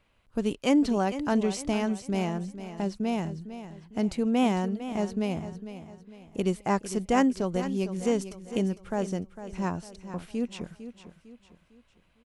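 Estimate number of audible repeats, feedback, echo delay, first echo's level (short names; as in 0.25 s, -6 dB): 3, 40%, 0.453 s, -12.0 dB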